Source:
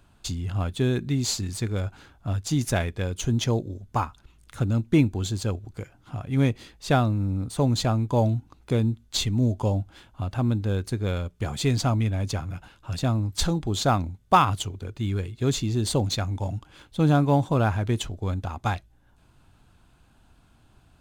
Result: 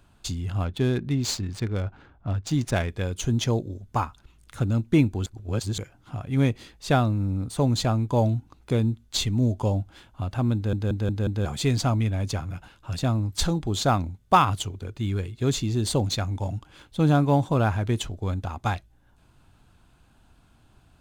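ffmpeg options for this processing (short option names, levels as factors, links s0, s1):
-filter_complex "[0:a]asettb=1/sr,asplit=3[s0][s1][s2];[s0]atrim=end=0.654[s3];[s1]atrim=start=0.65:end=2.89,asetpts=PTS-STARTPTS,afade=t=in:d=0.004:c=qsin,afade=t=out:st=2.236:d=0.004:c=qsin,adynamicsmooth=sensitivity=8:basefreq=2000[s4];[s2]atrim=start=2.886[s5];[s3][s4]acrossfade=d=0.004:c1=hsin:c2=qsin[s6];[s6][s5]acrossfade=d=0.004:c1=qsin:c2=hsin,asplit=8[s7][s8][s9][s10][s11][s12][s13][s14];[s7]atrim=end=5.262[s15];[s8]atrim=start=5.258:end=5.782,asetpts=PTS-STARTPTS,areverse[s16];[s9]atrim=start=5.778:end=10.732[s17];[s10]atrim=start=10.548:end=10.732[s18];[s11]atrim=start=10.548:end=10.732[s19];[s12]atrim=start=10.548:end=10.732[s20];[s13]atrim=start=10.548:end=10.732[s21];[s14]atrim=start=11.448[s22];[s15][s16]acrossfade=d=0.004:c1=hsin:c2=hsin[s23];[s23][s17]acrossfade=d=0.004:c1=hsin:c2=hsin[s24];[s24][s18]acrossfade=d=0.004:c1=hsin:c2=hsin[s25];[s25][s19]acrossfade=d=0.004:c1=hsin:c2=hsin[s26];[s26][s20]acrossfade=d=0.004:c1=hsin:c2=hsin[s27];[s27][s21]acrossfade=d=0.004:c1=hsin:c2=hsin[s28];[s28][s22]acrossfade=d=0.004:c1=hsin:c2=hsin"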